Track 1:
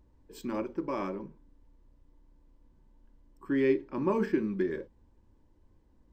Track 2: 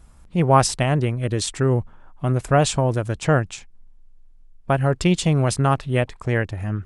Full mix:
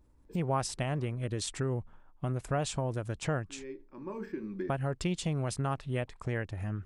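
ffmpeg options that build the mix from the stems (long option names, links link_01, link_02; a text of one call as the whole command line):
ffmpeg -i stem1.wav -i stem2.wav -filter_complex "[0:a]bandreject=frequency=3000:width=12,volume=-2dB[link_01];[1:a]agate=range=-33dB:threshold=-36dB:ratio=3:detection=peak,volume=-6dB,asplit=2[link_02][link_03];[link_03]apad=whole_len=270261[link_04];[link_01][link_04]sidechaincompress=threshold=-38dB:ratio=6:attack=7.3:release=1040[link_05];[link_05][link_02]amix=inputs=2:normalize=0,acompressor=threshold=-34dB:ratio=2" out.wav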